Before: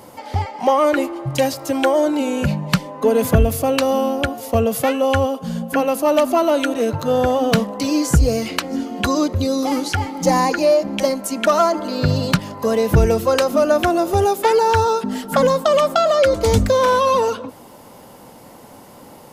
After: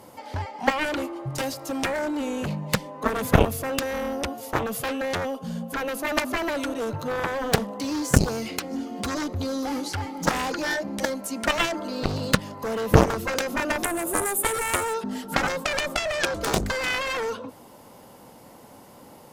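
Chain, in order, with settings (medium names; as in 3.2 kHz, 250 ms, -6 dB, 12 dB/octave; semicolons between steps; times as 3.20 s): Chebyshev shaper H 3 -6 dB, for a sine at -4 dBFS; 13.84–14.94 s: resonant high shelf 6.9 kHz +10.5 dB, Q 3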